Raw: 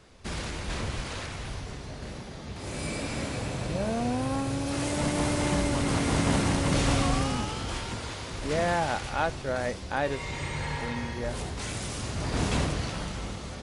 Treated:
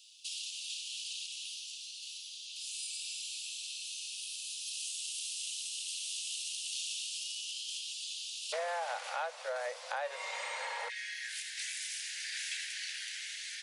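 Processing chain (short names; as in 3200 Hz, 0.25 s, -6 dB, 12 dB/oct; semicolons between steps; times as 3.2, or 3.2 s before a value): steep high-pass 2700 Hz 96 dB/oct, from 8.52 s 490 Hz, from 10.88 s 1600 Hz; compressor 3:1, threshold -46 dBFS, peak gain reduction 16.5 dB; gain +6.5 dB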